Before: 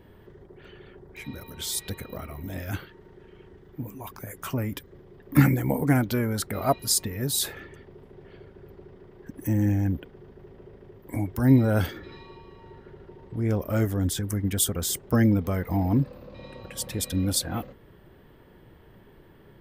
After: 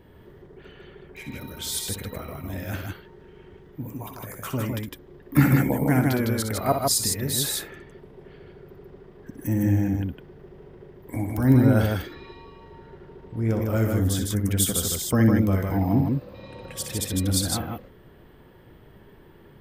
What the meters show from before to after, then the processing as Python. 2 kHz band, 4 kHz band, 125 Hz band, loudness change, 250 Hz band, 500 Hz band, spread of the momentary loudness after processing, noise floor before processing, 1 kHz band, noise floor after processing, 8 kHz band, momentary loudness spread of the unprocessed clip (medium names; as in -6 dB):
+2.0 dB, +2.5 dB, +2.0 dB, +2.0 dB, +2.0 dB, +2.5 dB, 18 LU, -53 dBFS, +2.5 dB, -51 dBFS, +2.0 dB, 18 LU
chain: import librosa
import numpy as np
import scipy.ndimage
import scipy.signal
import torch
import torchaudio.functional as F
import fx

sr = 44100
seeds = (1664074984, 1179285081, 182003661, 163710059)

y = fx.echo_multitap(x, sr, ms=(62, 156), db=(-7.5, -3.0))